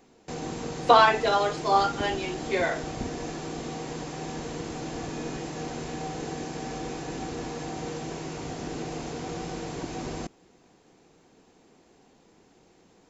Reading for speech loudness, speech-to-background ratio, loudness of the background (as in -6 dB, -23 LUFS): -23.5 LUFS, 11.5 dB, -35.0 LUFS